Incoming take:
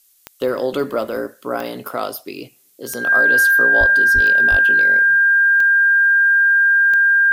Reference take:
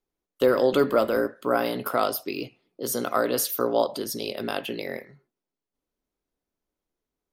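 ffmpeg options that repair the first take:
-filter_complex "[0:a]adeclick=t=4,bandreject=f=1.6k:w=30,asplit=3[a][b][c];[a]afade=t=out:st=3.79:d=0.02[d];[b]highpass=f=140:w=0.5412,highpass=f=140:w=1.3066,afade=t=in:st=3.79:d=0.02,afade=t=out:st=3.91:d=0.02[e];[c]afade=t=in:st=3.91:d=0.02[f];[d][e][f]amix=inputs=3:normalize=0,asplit=3[g][h][i];[g]afade=t=out:st=4.14:d=0.02[j];[h]highpass=f=140:w=0.5412,highpass=f=140:w=1.3066,afade=t=in:st=4.14:d=0.02,afade=t=out:st=4.26:d=0.02[k];[i]afade=t=in:st=4.26:d=0.02[l];[j][k][l]amix=inputs=3:normalize=0,asplit=3[m][n][o];[m]afade=t=out:st=4.5:d=0.02[p];[n]highpass=f=140:w=0.5412,highpass=f=140:w=1.3066,afade=t=in:st=4.5:d=0.02,afade=t=out:st=4.62:d=0.02[q];[o]afade=t=in:st=4.62:d=0.02[r];[p][q][r]amix=inputs=3:normalize=0,agate=range=-21dB:threshold=-44dB"

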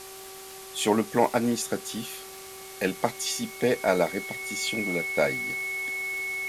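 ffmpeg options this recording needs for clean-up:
-af "adeclick=t=4,bandreject=f=383.8:t=h:w=4,bandreject=f=767.6:t=h:w=4,bandreject=f=1.1514k:t=h:w=4,bandreject=f=2.2k:w=30,afftdn=nr=28:nf=-43"

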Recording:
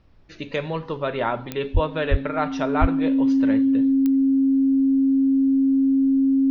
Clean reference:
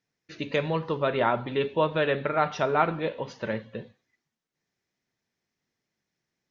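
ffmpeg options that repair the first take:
-filter_complex "[0:a]adeclick=t=4,bandreject=f=270:w=30,asplit=3[a][b][c];[a]afade=t=out:st=1.73:d=0.02[d];[b]highpass=f=140:w=0.5412,highpass=f=140:w=1.3066,afade=t=in:st=1.73:d=0.02,afade=t=out:st=1.85:d=0.02[e];[c]afade=t=in:st=1.85:d=0.02[f];[d][e][f]amix=inputs=3:normalize=0,asplit=3[g][h][i];[g]afade=t=out:st=2.1:d=0.02[j];[h]highpass=f=140:w=0.5412,highpass=f=140:w=1.3066,afade=t=in:st=2.1:d=0.02,afade=t=out:st=2.22:d=0.02[k];[i]afade=t=in:st=2.22:d=0.02[l];[j][k][l]amix=inputs=3:normalize=0,asplit=3[m][n][o];[m]afade=t=out:st=2.8:d=0.02[p];[n]highpass=f=140:w=0.5412,highpass=f=140:w=1.3066,afade=t=in:st=2.8:d=0.02,afade=t=out:st=2.92:d=0.02[q];[o]afade=t=in:st=2.92:d=0.02[r];[p][q][r]amix=inputs=3:normalize=0,agate=range=-21dB:threshold=-28dB"

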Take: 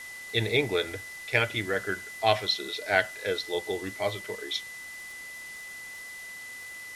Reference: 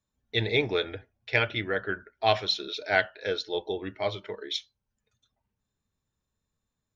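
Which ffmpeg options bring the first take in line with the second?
-af "adeclick=t=4,bandreject=f=2k:w=30,afwtdn=0.0045"

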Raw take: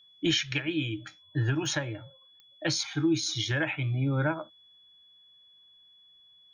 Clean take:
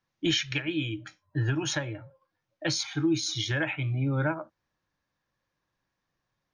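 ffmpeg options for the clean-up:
-af "adeclick=t=4,bandreject=f=3.4k:w=30"

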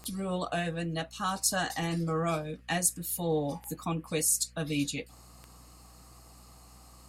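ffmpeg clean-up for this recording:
-af "adeclick=t=4,bandreject=f=60.5:t=h:w=4,bandreject=f=121:t=h:w=4,bandreject=f=181.5:t=h:w=4,bandreject=f=242:t=h:w=4"

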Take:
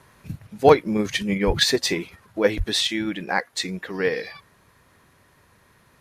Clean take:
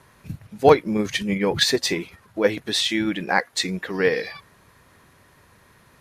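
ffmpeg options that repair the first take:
-filter_complex "[0:a]asplit=3[a][b][c];[a]afade=t=out:st=1.46:d=0.02[d];[b]highpass=f=140:w=0.5412,highpass=f=140:w=1.3066,afade=t=in:st=1.46:d=0.02,afade=t=out:st=1.58:d=0.02[e];[c]afade=t=in:st=1.58:d=0.02[f];[d][e][f]amix=inputs=3:normalize=0,asplit=3[g][h][i];[g]afade=t=out:st=2.57:d=0.02[j];[h]highpass=f=140:w=0.5412,highpass=f=140:w=1.3066,afade=t=in:st=2.57:d=0.02,afade=t=out:st=2.69:d=0.02[k];[i]afade=t=in:st=2.69:d=0.02[l];[j][k][l]amix=inputs=3:normalize=0,asetnsamples=n=441:p=0,asendcmd='2.87 volume volume 3dB',volume=0dB"

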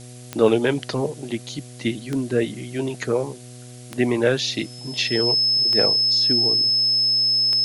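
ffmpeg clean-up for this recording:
-af "adeclick=t=4,bandreject=f=123.2:t=h:w=4,bandreject=f=246.4:t=h:w=4,bandreject=f=369.6:t=h:w=4,bandreject=f=492.8:t=h:w=4,bandreject=f=616:t=h:w=4,bandreject=f=739.2:t=h:w=4,bandreject=f=5.2k:w=30,afftdn=nr=27:nf=-40"

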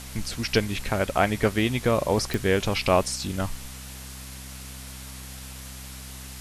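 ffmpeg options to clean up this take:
-af "adeclick=t=4,bandreject=f=65:t=h:w=4,bandreject=f=130:t=h:w=4,bandreject=f=195:t=h:w=4,bandreject=f=260:t=h:w=4,afwtdn=0.0089"

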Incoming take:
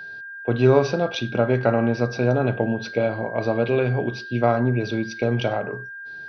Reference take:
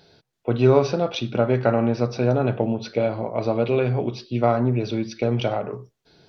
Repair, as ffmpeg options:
-af "bandreject=f=1.6k:w=30"

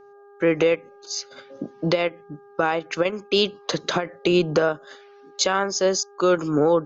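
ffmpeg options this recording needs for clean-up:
-af "bandreject=f=404.5:t=h:w=4,bandreject=f=809:t=h:w=4,bandreject=f=1.2135k:t=h:w=4,bandreject=f=1.618k:t=h:w=4"

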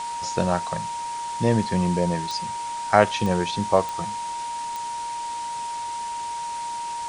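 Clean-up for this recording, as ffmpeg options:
-af "adeclick=t=4,bandreject=f=940:w=30,afftdn=nr=30:nf=-31"

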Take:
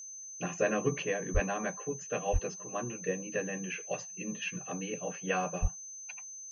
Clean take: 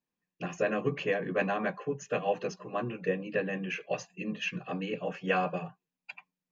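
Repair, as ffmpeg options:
-filter_complex "[0:a]bandreject=f=6.2k:w=30,asplit=3[a][b][c];[a]afade=t=out:st=1.33:d=0.02[d];[b]highpass=f=140:w=0.5412,highpass=f=140:w=1.3066,afade=t=in:st=1.33:d=0.02,afade=t=out:st=1.45:d=0.02[e];[c]afade=t=in:st=1.45:d=0.02[f];[d][e][f]amix=inputs=3:normalize=0,asplit=3[g][h][i];[g]afade=t=out:st=2.32:d=0.02[j];[h]highpass=f=140:w=0.5412,highpass=f=140:w=1.3066,afade=t=in:st=2.32:d=0.02,afade=t=out:st=2.44:d=0.02[k];[i]afade=t=in:st=2.44:d=0.02[l];[j][k][l]amix=inputs=3:normalize=0,asplit=3[m][n][o];[m]afade=t=out:st=5.61:d=0.02[p];[n]highpass=f=140:w=0.5412,highpass=f=140:w=1.3066,afade=t=in:st=5.61:d=0.02,afade=t=out:st=5.73:d=0.02[q];[o]afade=t=in:st=5.73:d=0.02[r];[p][q][r]amix=inputs=3:normalize=0,asetnsamples=n=441:p=0,asendcmd='1.02 volume volume 3.5dB',volume=0dB"

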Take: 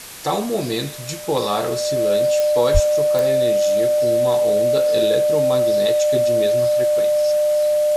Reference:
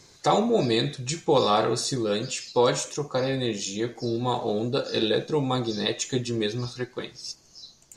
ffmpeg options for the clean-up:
-filter_complex "[0:a]adeclick=t=4,bandreject=f=600:w=30,asplit=3[a][b][c];[a]afade=t=out:st=2.73:d=0.02[d];[b]highpass=f=140:w=0.5412,highpass=f=140:w=1.3066,afade=t=in:st=2.73:d=0.02,afade=t=out:st=2.85:d=0.02[e];[c]afade=t=in:st=2.85:d=0.02[f];[d][e][f]amix=inputs=3:normalize=0,afwtdn=0.018"

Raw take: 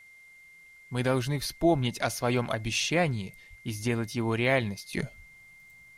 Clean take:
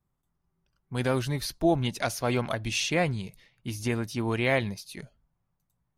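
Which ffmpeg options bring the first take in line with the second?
-filter_complex "[0:a]bandreject=f=2.1k:w=30,asplit=3[a][b][c];[a]afade=t=out:st=3.49:d=0.02[d];[b]highpass=f=140:w=0.5412,highpass=f=140:w=1.3066,afade=t=in:st=3.49:d=0.02,afade=t=out:st=3.61:d=0.02[e];[c]afade=t=in:st=3.61:d=0.02[f];[d][e][f]amix=inputs=3:normalize=0,asplit=3[g][h][i];[g]afade=t=out:st=5.16:d=0.02[j];[h]highpass=f=140:w=0.5412,highpass=f=140:w=1.3066,afade=t=in:st=5.16:d=0.02,afade=t=out:st=5.28:d=0.02[k];[i]afade=t=in:st=5.28:d=0.02[l];[j][k][l]amix=inputs=3:normalize=0,agate=range=-21dB:threshold=-46dB,asetnsamples=n=441:p=0,asendcmd='4.93 volume volume -10.5dB',volume=0dB"

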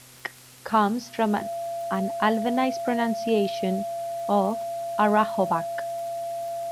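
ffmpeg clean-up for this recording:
-af "adeclick=t=4,bandreject=f=126.6:t=h:w=4,bandreject=f=253.2:t=h:w=4,bandreject=f=379.8:t=h:w=4,bandreject=f=506.4:t=h:w=4,bandreject=f=633:t=h:w=4,bandreject=f=680:w=30,afwtdn=0.004"

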